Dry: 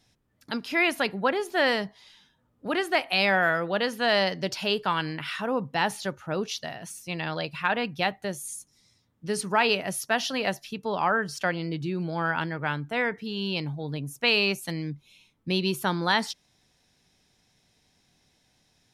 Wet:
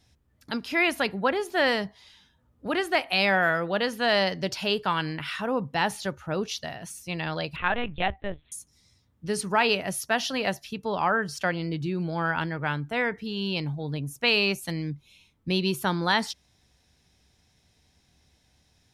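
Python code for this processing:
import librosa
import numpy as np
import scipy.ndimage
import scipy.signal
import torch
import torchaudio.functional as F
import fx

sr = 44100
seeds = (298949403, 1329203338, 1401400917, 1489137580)

y = fx.lpc_vocoder(x, sr, seeds[0], excitation='pitch_kept', order=10, at=(7.56, 8.52))
y = fx.peak_eq(y, sr, hz=68.0, db=14.5, octaves=0.79)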